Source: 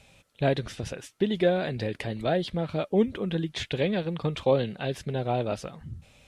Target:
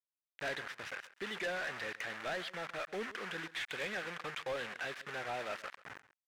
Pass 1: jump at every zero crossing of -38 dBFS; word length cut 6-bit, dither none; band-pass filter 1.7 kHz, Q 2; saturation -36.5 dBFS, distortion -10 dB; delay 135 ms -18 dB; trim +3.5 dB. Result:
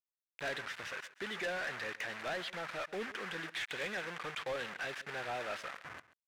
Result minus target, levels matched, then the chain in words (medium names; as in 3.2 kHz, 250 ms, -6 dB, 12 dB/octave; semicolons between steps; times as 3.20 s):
jump at every zero crossing: distortion +9 dB
jump at every zero crossing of -47.5 dBFS; word length cut 6-bit, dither none; band-pass filter 1.7 kHz, Q 2; saturation -36.5 dBFS, distortion -10 dB; delay 135 ms -18 dB; trim +3.5 dB